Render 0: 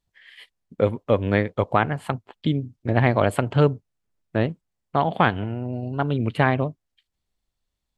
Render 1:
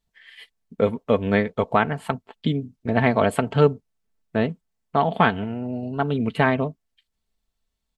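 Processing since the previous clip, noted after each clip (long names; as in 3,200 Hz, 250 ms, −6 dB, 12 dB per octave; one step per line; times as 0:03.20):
comb filter 4.5 ms, depth 49%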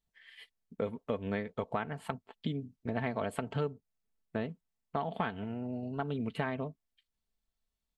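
downward compressor 3 to 1, threshold −23 dBFS, peak gain reduction 10 dB
level −8.5 dB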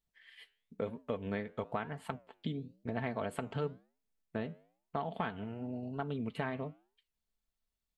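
flanger 1 Hz, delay 5.4 ms, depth 5.7 ms, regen −89%
level +2 dB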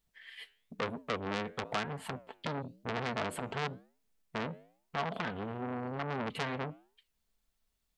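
saturating transformer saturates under 3,400 Hz
level +7.5 dB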